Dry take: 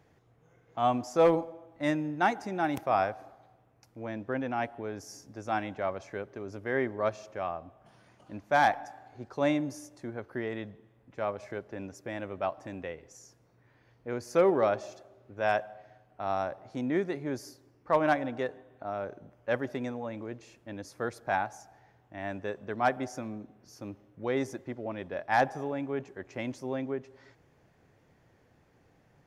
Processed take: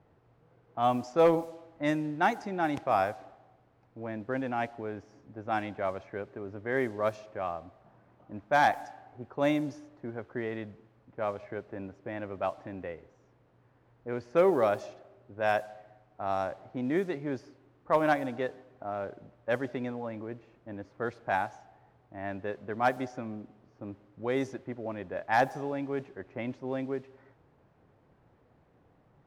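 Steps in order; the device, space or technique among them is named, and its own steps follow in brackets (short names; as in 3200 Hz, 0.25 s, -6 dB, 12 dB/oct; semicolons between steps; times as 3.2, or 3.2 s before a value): cassette deck with a dynamic noise filter (white noise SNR 27 dB; low-pass opened by the level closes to 1000 Hz, open at -23 dBFS)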